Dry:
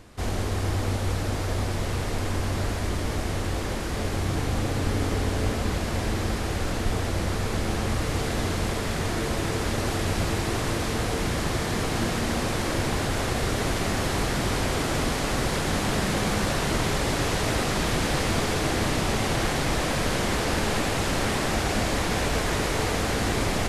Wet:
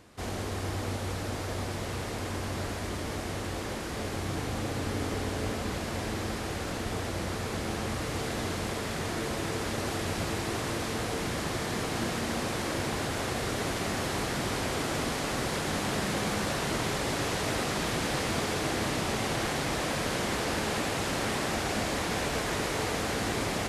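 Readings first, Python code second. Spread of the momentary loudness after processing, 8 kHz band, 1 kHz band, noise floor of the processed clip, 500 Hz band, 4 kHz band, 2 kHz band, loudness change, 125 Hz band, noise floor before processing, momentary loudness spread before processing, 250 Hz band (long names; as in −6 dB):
5 LU, −4.0 dB, −4.0 dB, −35 dBFS, −4.5 dB, −4.0 dB, −4.0 dB, −5.0 dB, −7.5 dB, −28 dBFS, 3 LU, −5.0 dB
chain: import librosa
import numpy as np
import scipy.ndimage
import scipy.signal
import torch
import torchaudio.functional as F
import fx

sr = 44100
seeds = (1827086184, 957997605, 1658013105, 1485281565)

y = fx.highpass(x, sr, hz=120.0, slope=6)
y = y * 10.0 ** (-4.0 / 20.0)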